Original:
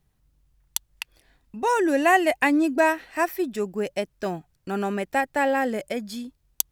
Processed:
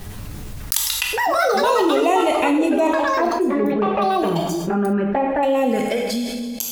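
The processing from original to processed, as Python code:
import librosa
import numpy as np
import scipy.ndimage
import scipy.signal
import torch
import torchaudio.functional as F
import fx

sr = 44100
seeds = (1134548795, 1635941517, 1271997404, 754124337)

y = fx.fade_out_tail(x, sr, length_s=1.14)
y = fx.lowpass(y, sr, hz=1300.0, slope=12, at=(2.87, 5.43))
y = fx.env_flanger(y, sr, rest_ms=9.9, full_db=-21.0)
y = fx.rev_plate(y, sr, seeds[0], rt60_s=0.95, hf_ratio=1.0, predelay_ms=0, drr_db=3.5)
y = fx.echo_pitch(y, sr, ms=180, semitones=6, count=2, db_per_echo=-3.0)
y = fx.env_flatten(y, sr, amount_pct=70)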